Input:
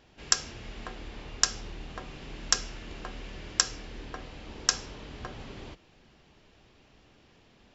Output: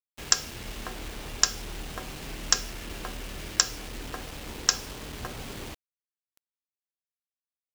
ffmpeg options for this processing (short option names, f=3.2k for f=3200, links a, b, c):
-filter_complex "[0:a]highshelf=f=6.3k:g=2,asplit=2[a][b];[b]acompressor=threshold=-51dB:ratio=6,volume=-0.5dB[c];[a][c]amix=inputs=2:normalize=0,acrusher=bits=6:mix=0:aa=0.000001,volume=1dB"